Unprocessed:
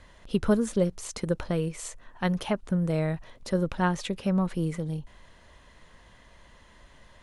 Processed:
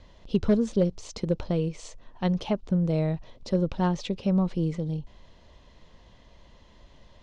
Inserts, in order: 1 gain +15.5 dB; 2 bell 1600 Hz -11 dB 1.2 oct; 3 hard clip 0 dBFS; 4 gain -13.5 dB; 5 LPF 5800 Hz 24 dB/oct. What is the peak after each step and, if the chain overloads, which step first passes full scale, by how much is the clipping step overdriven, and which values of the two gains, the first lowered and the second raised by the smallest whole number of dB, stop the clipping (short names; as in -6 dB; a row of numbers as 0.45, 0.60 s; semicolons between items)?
+5.0, +3.5, 0.0, -13.5, -13.5 dBFS; step 1, 3.5 dB; step 1 +11.5 dB, step 4 -9.5 dB